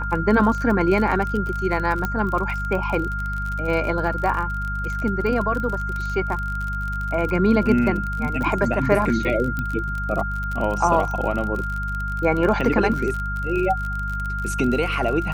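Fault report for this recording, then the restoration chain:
surface crackle 40 per second −26 dBFS
mains hum 50 Hz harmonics 4 −28 dBFS
whistle 1,400 Hz −27 dBFS
0:02.05: click −11 dBFS
0:09.59: click −14 dBFS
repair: click removal
hum removal 50 Hz, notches 4
notch filter 1,400 Hz, Q 30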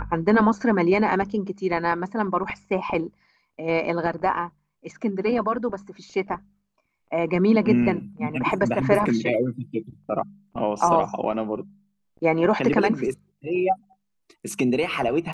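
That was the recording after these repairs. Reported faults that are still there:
none of them is left

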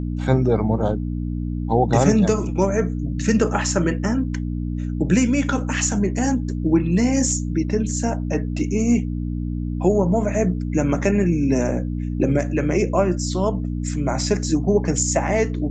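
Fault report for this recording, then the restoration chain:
mains hum 60 Hz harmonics 5 −25 dBFS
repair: hum removal 60 Hz, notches 5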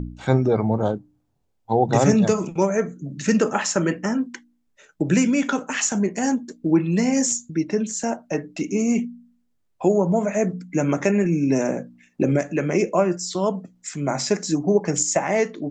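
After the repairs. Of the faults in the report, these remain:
none of them is left

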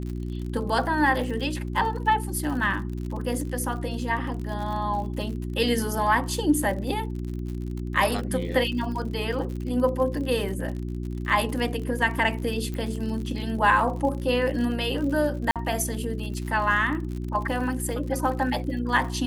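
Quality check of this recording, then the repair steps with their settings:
surface crackle 60 per second −33 dBFS
mains hum 60 Hz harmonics 6 −31 dBFS
0:12.74: click −21 dBFS
0:15.51–0:15.56: drop-out 47 ms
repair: click removal
hum removal 60 Hz, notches 6
repair the gap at 0:15.51, 47 ms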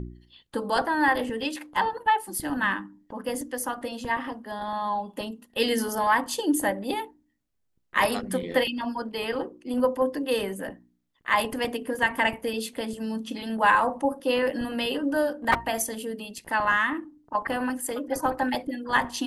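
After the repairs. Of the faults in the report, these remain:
none of them is left

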